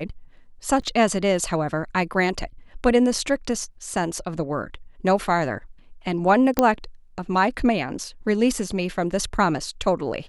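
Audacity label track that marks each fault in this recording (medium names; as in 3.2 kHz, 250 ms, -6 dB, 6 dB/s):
0.820000	0.820000	dropout 3.4 ms
6.590000	6.590000	pop -4 dBFS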